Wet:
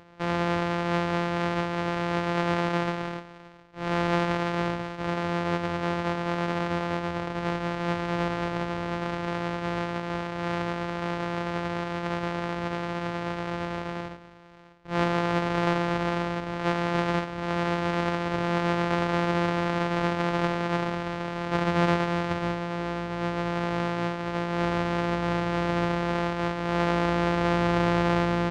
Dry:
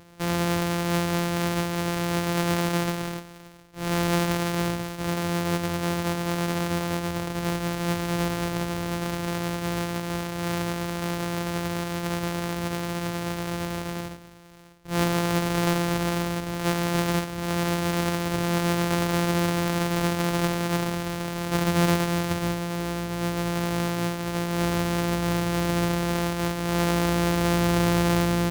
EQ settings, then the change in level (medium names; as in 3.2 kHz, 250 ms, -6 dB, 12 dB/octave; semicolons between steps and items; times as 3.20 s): tape spacing loss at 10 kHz 31 dB; bass shelf 430 Hz -11 dB; +6.5 dB